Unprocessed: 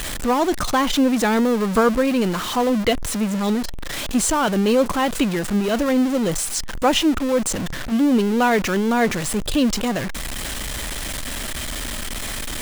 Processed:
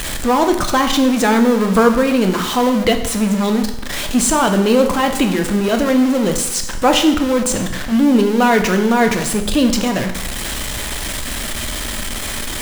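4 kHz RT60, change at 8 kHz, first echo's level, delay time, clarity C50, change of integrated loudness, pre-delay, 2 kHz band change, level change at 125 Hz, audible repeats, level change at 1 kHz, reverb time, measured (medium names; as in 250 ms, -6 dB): 0.80 s, +4.5 dB, no echo, no echo, 8.5 dB, +4.5 dB, 5 ms, +4.5 dB, +4.5 dB, no echo, +5.0 dB, 0.90 s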